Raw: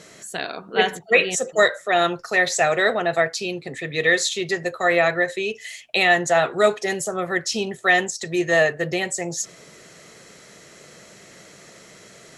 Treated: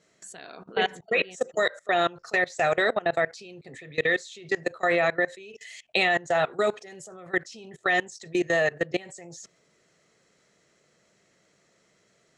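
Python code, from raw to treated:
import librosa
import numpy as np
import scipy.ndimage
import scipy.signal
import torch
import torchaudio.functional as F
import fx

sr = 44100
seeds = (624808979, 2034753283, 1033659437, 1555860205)

y = scipy.signal.sosfilt(scipy.signal.butter(4, 9100.0, 'lowpass', fs=sr, output='sos'), x)
y = fx.high_shelf(y, sr, hz=2600.0, db=-2.0)
y = fx.level_steps(y, sr, step_db=22)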